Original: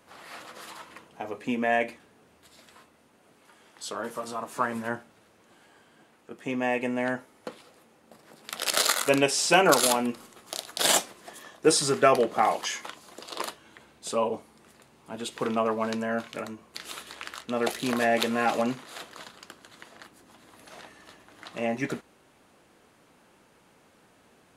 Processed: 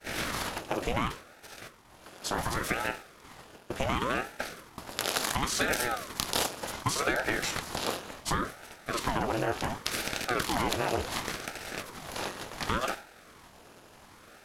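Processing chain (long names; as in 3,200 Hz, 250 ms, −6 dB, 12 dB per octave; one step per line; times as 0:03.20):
compressor on every frequency bin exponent 0.6
downward expander −32 dBFS
convolution reverb RT60 0.70 s, pre-delay 4 ms, DRR 18.5 dB
in parallel at +2 dB: speech leveller within 4 dB 2 s
on the sum: bass and treble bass +2 dB, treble +4 dB
tempo change 1.7×
parametric band 8,400 Hz −8.5 dB 0.34 octaves
downward compressor 4 to 1, threshold −15 dBFS, peak gain reduction 8.5 dB
ring modulator whose carrier an LFO sweeps 600 Hz, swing 85%, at 0.69 Hz
level −8 dB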